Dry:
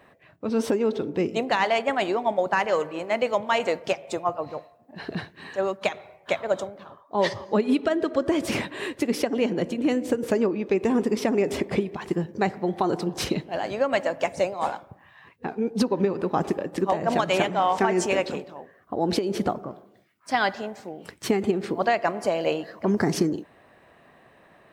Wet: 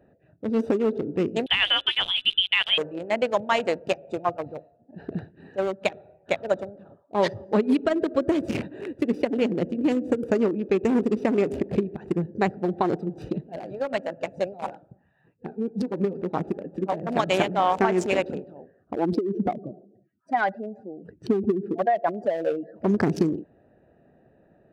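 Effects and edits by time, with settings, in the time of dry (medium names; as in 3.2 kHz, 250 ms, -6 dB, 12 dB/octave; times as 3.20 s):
1.46–2.78 s: frequency inversion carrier 3.7 kHz
12.97–17.17 s: flange 1.9 Hz, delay 4.1 ms, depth 2.7 ms, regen -34%
18.95–22.76 s: spectral contrast enhancement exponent 1.9
whole clip: local Wiener filter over 41 samples; trim +1.5 dB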